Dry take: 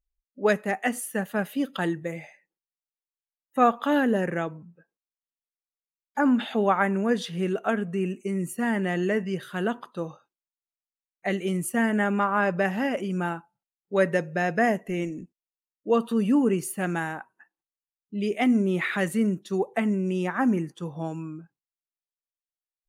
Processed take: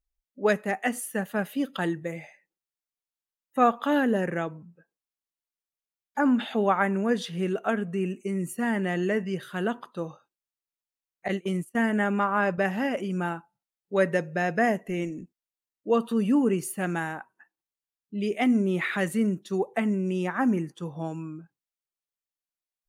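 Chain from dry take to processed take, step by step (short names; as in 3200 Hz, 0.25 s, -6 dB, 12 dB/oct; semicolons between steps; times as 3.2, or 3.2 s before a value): 11.28–12.58 gate -27 dBFS, range -23 dB; gain -1 dB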